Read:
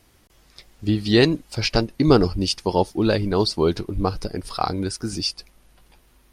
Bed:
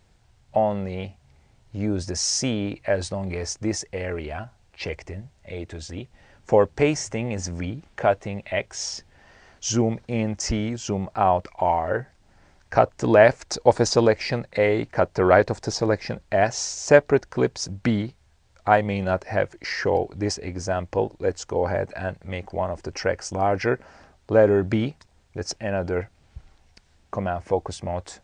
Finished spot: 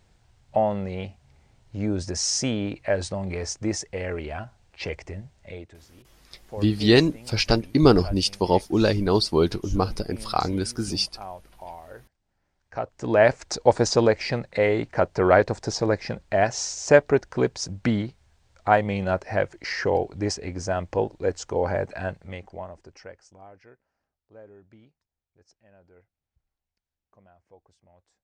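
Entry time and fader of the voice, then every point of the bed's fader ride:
5.75 s, −0.5 dB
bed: 0:05.47 −1 dB
0:05.87 −19 dB
0:12.50 −19 dB
0:13.31 −1 dB
0:22.07 −1 dB
0:23.75 −31 dB

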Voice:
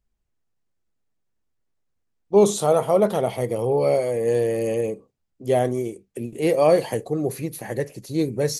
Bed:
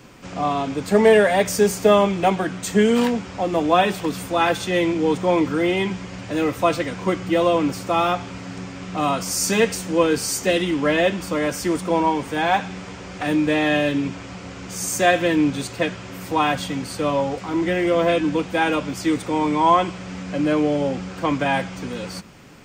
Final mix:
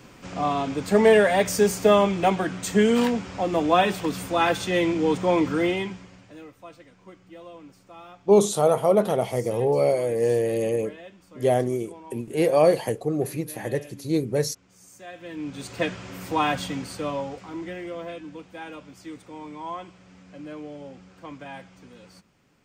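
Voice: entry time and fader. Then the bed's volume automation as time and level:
5.95 s, −1.0 dB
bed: 0:05.65 −2.5 dB
0:06.55 −25.5 dB
0:15.07 −25.5 dB
0:15.80 −3.5 dB
0:16.67 −3.5 dB
0:18.21 −18.5 dB

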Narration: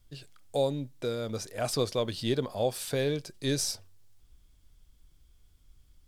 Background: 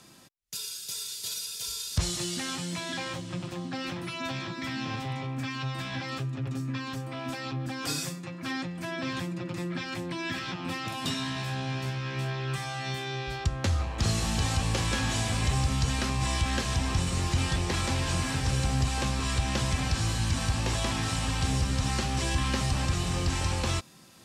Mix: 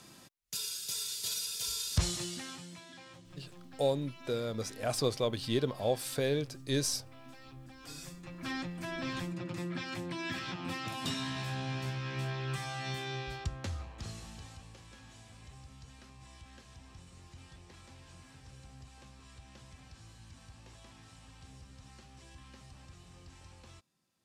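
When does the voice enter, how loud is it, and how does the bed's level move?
3.25 s, −2.0 dB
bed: 0:01.96 −1 dB
0:02.90 −18 dB
0:07.81 −18 dB
0:08.45 −4.5 dB
0:13.16 −4.5 dB
0:14.79 −26 dB

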